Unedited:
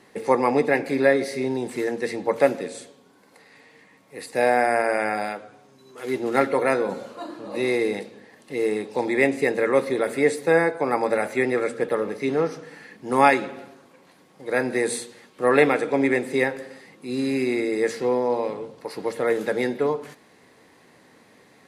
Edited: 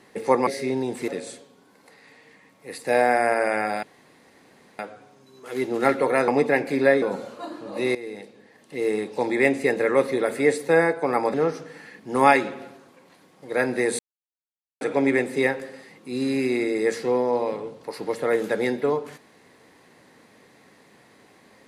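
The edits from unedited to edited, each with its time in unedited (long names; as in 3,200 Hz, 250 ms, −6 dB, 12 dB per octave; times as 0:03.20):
0:00.47–0:01.21: move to 0:06.80
0:01.82–0:02.56: remove
0:05.31: splice in room tone 0.96 s
0:07.73–0:08.75: fade in, from −16 dB
0:11.12–0:12.31: remove
0:14.96–0:15.78: silence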